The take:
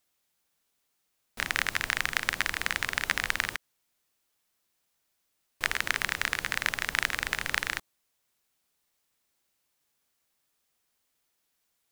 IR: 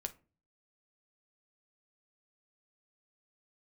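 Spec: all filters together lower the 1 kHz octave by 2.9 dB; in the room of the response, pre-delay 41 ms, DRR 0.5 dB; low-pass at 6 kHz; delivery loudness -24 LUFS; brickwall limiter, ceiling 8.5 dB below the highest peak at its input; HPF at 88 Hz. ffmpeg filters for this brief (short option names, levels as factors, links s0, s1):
-filter_complex "[0:a]highpass=88,lowpass=6000,equalizer=f=1000:t=o:g=-4,alimiter=limit=0.188:level=0:latency=1,asplit=2[s0][s1];[1:a]atrim=start_sample=2205,adelay=41[s2];[s1][s2]afir=irnorm=-1:irlink=0,volume=1.12[s3];[s0][s3]amix=inputs=2:normalize=0,volume=2.66"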